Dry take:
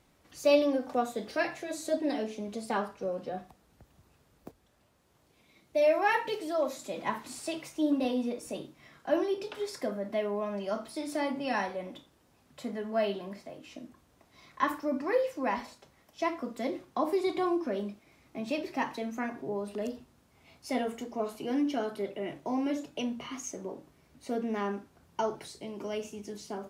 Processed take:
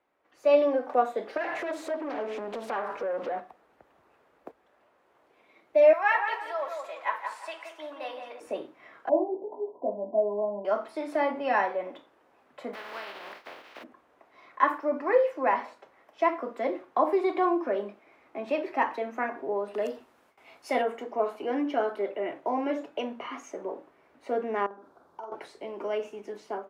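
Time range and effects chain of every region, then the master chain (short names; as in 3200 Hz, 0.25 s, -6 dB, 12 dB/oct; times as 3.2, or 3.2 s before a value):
1.37–3.4 compressor, threshold -42 dBFS + sample leveller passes 3 + Doppler distortion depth 0.27 ms
5.93–8.4 HPF 1100 Hz + tape echo 0.173 s, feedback 40%, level -4 dB, low-pass 1800 Hz
9.09–10.65 rippled Chebyshev low-pass 1000 Hz, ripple 6 dB + doubler 19 ms -4 dB
12.73–13.82 spectral contrast lowered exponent 0.23 + compressor 4:1, threshold -40 dBFS + resonant high shelf 6000 Hz -8.5 dB, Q 1.5
19.74–20.82 gate with hold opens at -54 dBFS, closes at -62 dBFS + high shelf 3400 Hz +11 dB
24.66–25.32 band shelf 2300 Hz -12 dB 1 oct + compressor, threshold -46 dBFS + doubler 46 ms -5 dB
whole clip: three-band isolator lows -24 dB, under 340 Hz, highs -20 dB, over 2400 Hz; AGC gain up to 12 dB; gain -4.5 dB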